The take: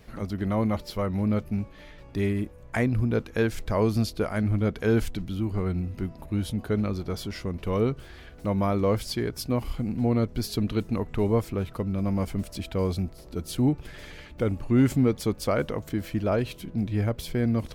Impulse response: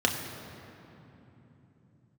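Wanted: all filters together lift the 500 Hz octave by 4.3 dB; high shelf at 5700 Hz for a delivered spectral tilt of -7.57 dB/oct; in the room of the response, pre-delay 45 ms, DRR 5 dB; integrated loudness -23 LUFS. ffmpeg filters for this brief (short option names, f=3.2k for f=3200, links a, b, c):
-filter_complex "[0:a]equalizer=f=500:t=o:g=5,highshelf=f=5.7k:g=3,asplit=2[a][b];[1:a]atrim=start_sample=2205,adelay=45[c];[b][c]afir=irnorm=-1:irlink=0,volume=-17dB[d];[a][d]amix=inputs=2:normalize=0,volume=0.5dB"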